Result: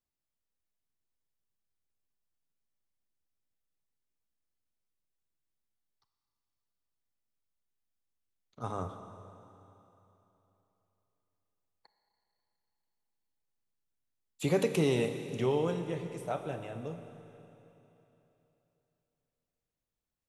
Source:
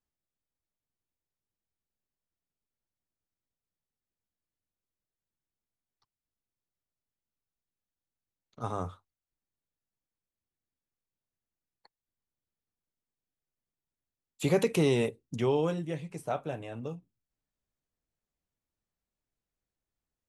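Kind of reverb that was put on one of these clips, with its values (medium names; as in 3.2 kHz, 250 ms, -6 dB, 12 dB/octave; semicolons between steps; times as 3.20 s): Schroeder reverb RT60 3.3 s, combs from 28 ms, DRR 7.5 dB; trim -2.5 dB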